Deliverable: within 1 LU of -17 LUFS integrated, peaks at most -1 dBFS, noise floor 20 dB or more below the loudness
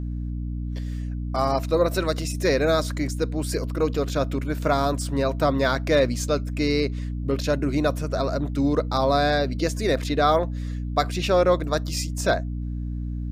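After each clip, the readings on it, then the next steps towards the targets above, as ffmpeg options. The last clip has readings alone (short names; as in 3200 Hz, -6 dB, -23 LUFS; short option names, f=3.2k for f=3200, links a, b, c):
hum 60 Hz; harmonics up to 300 Hz; hum level -26 dBFS; loudness -24.0 LUFS; peak -6.5 dBFS; loudness target -17.0 LUFS
-> -af "bandreject=f=60:t=h:w=6,bandreject=f=120:t=h:w=6,bandreject=f=180:t=h:w=6,bandreject=f=240:t=h:w=6,bandreject=f=300:t=h:w=6"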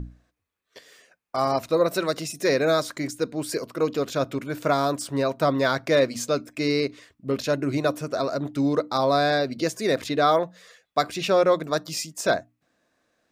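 hum none; loudness -24.5 LUFS; peak -7.5 dBFS; loudness target -17.0 LUFS
-> -af "volume=7.5dB,alimiter=limit=-1dB:level=0:latency=1"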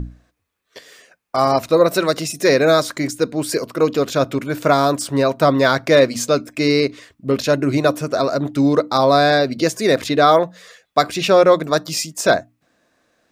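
loudness -17.0 LUFS; peak -1.0 dBFS; noise floor -71 dBFS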